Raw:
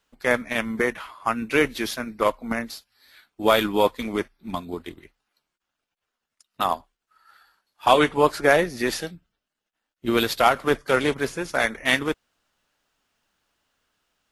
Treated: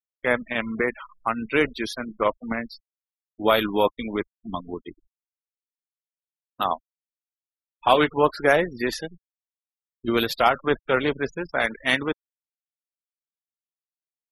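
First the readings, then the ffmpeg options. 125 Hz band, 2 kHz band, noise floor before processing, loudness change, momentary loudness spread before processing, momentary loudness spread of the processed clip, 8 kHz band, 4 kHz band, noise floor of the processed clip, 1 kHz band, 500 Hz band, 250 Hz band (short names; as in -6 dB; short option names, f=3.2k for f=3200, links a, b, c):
-1.0 dB, -1.0 dB, -85 dBFS, -1.0 dB, 13 LU, 13 LU, -8.0 dB, -1.5 dB, under -85 dBFS, -1.0 dB, -1.0 dB, -1.0 dB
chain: -af "acrusher=bits=7:dc=4:mix=0:aa=0.000001,afftfilt=real='re*gte(hypot(re,im),0.0316)':imag='im*gte(hypot(re,im),0.0316)':win_size=1024:overlap=0.75,volume=-1dB"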